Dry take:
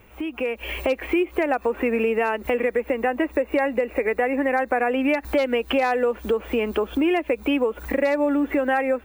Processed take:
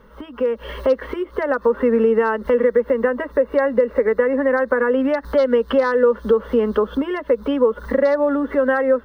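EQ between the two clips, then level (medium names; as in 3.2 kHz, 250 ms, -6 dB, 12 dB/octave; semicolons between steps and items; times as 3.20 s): Savitzky-Golay filter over 15 samples; static phaser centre 490 Hz, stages 8; +7.0 dB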